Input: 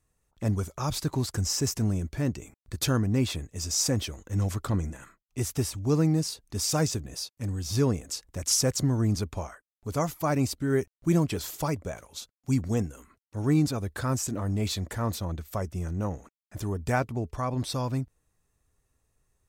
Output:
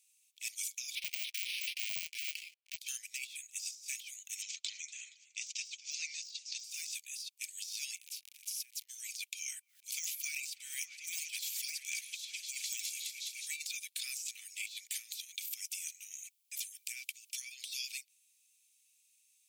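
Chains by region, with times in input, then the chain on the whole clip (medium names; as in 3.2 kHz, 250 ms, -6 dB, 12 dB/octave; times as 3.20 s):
0.95–2.78 s: square wave that keeps the level + careless resampling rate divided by 6×, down filtered, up hold + treble shelf 4.9 kHz -11.5 dB
4.42–6.64 s: steep low-pass 7.1 kHz 48 dB/octave + modulated delay 234 ms, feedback 57%, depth 132 cents, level -20 dB
7.95–8.88 s: FFT filter 450 Hz 0 dB, 7.7 kHz -24 dB, 11 kHz -11 dB + crackle 76 per s -42 dBFS + compression 3:1, threshold -36 dBFS
9.40–13.48 s: delay with an opening low-pass 208 ms, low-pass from 400 Hz, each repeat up 1 oct, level -3 dB + decay stretcher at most 67 dB/s
14.95–17.54 s: treble shelf 7 kHz +7 dB + compressor with a negative ratio -33 dBFS
whole clip: de-esser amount 90%; Chebyshev high-pass 2.3 kHz, order 6; compressor with a negative ratio -48 dBFS, ratio -0.5; trim +8.5 dB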